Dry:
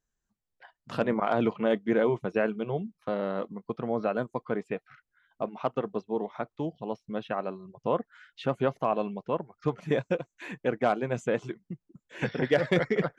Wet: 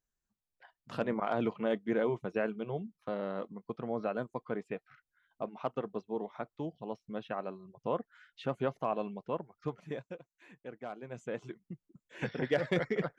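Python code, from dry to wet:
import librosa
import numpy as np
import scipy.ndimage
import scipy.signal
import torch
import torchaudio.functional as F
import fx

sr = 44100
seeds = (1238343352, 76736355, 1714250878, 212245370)

y = fx.gain(x, sr, db=fx.line((9.54, -6.0), (10.19, -17.5), (10.88, -17.5), (11.62, -6.0)))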